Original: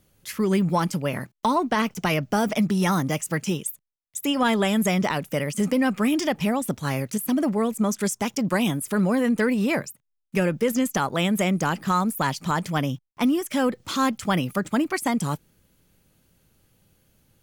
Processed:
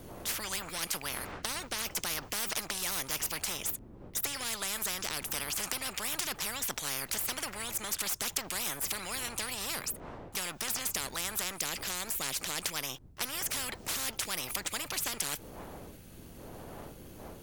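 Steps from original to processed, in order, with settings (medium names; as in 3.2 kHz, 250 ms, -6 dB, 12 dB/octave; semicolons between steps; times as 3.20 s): partial rectifier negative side -3 dB; wind noise 88 Hz -35 dBFS; spectrum-flattening compressor 10:1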